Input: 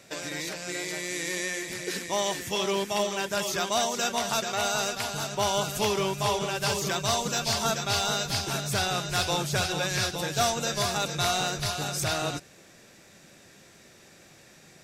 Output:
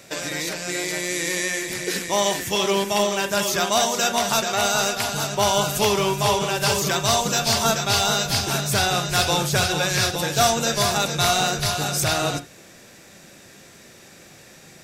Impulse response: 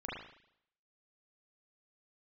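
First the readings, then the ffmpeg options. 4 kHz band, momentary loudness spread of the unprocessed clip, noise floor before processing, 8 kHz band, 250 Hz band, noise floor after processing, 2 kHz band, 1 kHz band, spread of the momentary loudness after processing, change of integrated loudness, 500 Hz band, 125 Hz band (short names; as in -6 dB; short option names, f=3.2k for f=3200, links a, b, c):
+6.5 dB, 6 LU, -54 dBFS, +7.0 dB, +6.5 dB, -47 dBFS, +6.5 dB, +6.5 dB, 6 LU, +6.5 dB, +6.5 dB, +6.5 dB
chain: -filter_complex "[0:a]highshelf=f=12k:g=6.5,asplit=2[a][b];[1:a]atrim=start_sample=2205,atrim=end_sample=3528[c];[b][c]afir=irnorm=-1:irlink=0,volume=-8.5dB[d];[a][d]amix=inputs=2:normalize=0,volume=4.5dB"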